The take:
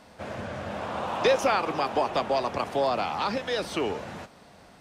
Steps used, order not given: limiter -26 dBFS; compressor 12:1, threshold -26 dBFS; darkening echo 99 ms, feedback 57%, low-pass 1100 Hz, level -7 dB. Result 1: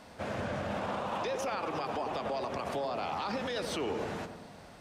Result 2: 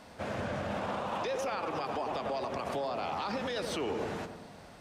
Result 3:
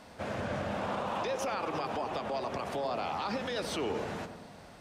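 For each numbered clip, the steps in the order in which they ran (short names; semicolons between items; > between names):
compressor > darkening echo > limiter; darkening echo > compressor > limiter; compressor > limiter > darkening echo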